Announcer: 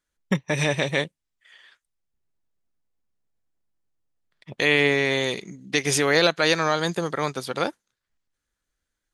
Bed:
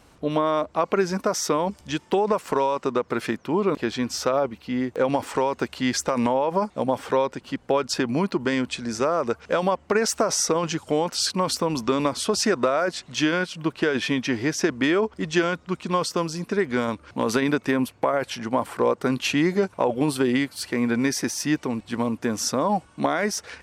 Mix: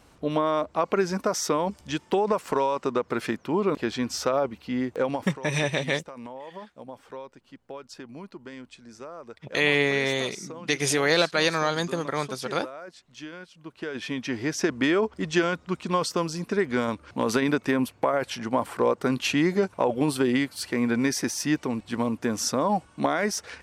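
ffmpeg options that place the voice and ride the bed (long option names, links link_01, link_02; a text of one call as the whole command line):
ffmpeg -i stem1.wav -i stem2.wav -filter_complex "[0:a]adelay=4950,volume=-2.5dB[link_01];[1:a]volume=14.5dB,afade=type=out:start_time=4.94:duration=0.45:silence=0.158489,afade=type=in:start_time=13.63:duration=1.15:silence=0.149624[link_02];[link_01][link_02]amix=inputs=2:normalize=0" out.wav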